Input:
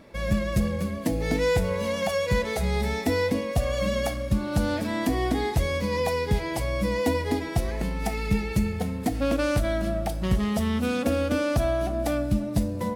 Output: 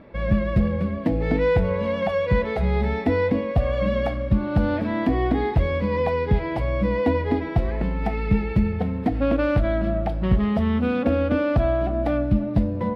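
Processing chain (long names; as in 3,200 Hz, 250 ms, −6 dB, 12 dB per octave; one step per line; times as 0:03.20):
high-frequency loss of the air 410 metres
level +4.5 dB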